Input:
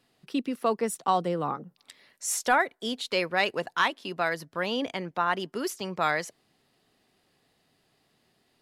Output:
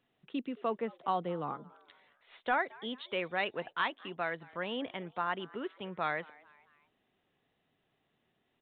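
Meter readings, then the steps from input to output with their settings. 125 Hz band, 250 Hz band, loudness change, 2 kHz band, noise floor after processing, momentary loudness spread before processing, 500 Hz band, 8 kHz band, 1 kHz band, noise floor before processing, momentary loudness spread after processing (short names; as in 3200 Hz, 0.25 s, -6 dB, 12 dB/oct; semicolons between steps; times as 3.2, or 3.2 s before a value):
-7.5 dB, -7.5 dB, -7.5 dB, -7.5 dB, -79 dBFS, 8 LU, -7.5 dB, under -40 dB, -7.5 dB, -71 dBFS, 8 LU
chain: frequency-shifting echo 0.221 s, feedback 48%, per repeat +140 Hz, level -23 dB; downsampling 8000 Hz; gain -7.5 dB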